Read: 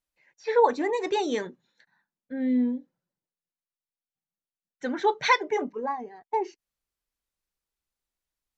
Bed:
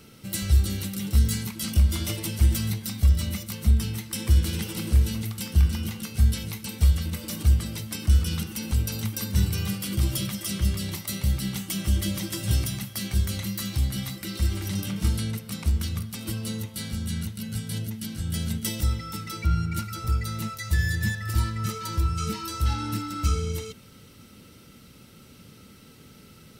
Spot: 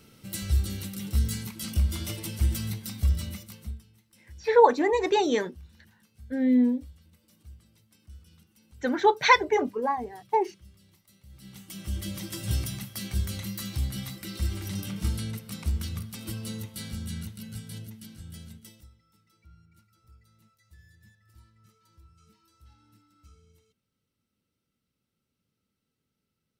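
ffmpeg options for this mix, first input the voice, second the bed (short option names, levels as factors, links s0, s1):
-filter_complex "[0:a]adelay=4000,volume=1.41[s0];[1:a]volume=9.44,afade=t=out:st=3.14:d=0.69:silence=0.0630957,afade=t=in:st=11.29:d=1.13:silence=0.0595662,afade=t=out:st=16.89:d=2.01:silence=0.0421697[s1];[s0][s1]amix=inputs=2:normalize=0"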